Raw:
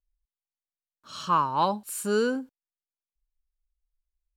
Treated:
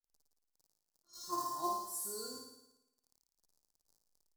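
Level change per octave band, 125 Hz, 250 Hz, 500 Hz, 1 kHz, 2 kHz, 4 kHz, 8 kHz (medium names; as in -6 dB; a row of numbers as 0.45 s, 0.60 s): -27.0 dB, -18.0 dB, -18.5 dB, -13.0 dB, -29.0 dB, -9.5 dB, -4.0 dB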